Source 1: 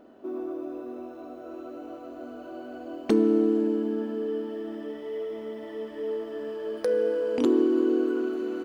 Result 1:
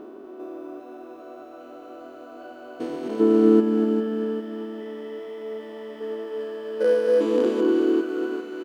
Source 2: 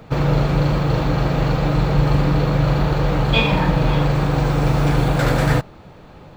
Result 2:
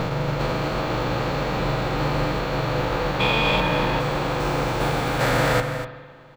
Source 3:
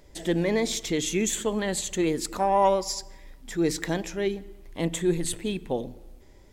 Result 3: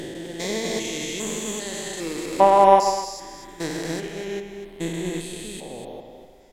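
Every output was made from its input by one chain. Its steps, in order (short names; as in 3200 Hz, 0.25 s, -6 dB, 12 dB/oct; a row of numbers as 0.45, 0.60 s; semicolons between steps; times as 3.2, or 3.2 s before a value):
stepped spectrum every 0.4 s; low shelf 480 Hz -6.5 dB; reverb removal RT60 0.66 s; bell 62 Hz -5 dB 2.3 oct; on a send: echo 0.245 s -8 dB; on the sum: spring tank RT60 2.1 s, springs 42/50 ms, chirp 30 ms, DRR 7 dB; upward expander 1.5:1, over -39 dBFS; match loudness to -23 LUFS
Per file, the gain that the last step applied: +12.5, +5.5, +13.0 dB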